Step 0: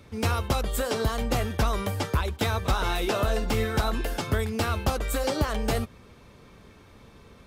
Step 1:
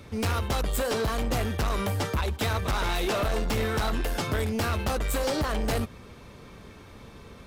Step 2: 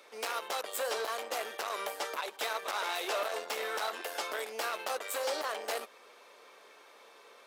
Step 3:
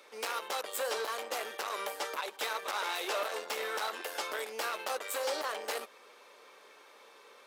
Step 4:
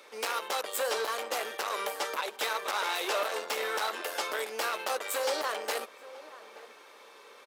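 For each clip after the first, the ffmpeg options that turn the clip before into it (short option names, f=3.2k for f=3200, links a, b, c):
-af "asoftclip=type=tanh:threshold=-27.5dB,volume=4.5dB"
-af "highpass=f=470:w=0.5412,highpass=f=470:w=1.3066,volume=-4dB"
-af "bandreject=f=680:w=13"
-filter_complex "[0:a]asplit=2[a][b];[b]adelay=874.6,volume=-16dB,highshelf=f=4k:g=-19.7[c];[a][c]amix=inputs=2:normalize=0,volume=3.5dB"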